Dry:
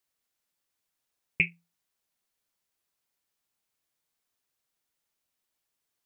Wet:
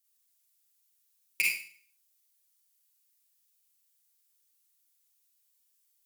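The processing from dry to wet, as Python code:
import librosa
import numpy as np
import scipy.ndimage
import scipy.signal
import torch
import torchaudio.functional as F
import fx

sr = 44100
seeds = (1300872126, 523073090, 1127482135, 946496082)

y = fx.cheby_harmonics(x, sr, harmonics=(8,), levels_db=(-20,), full_scale_db=-9.0)
y = np.diff(y, prepend=0.0)
y = fx.rev_schroeder(y, sr, rt60_s=0.48, comb_ms=33, drr_db=-3.0)
y = F.gain(torch.from_numpy(y), 3.5).numpy()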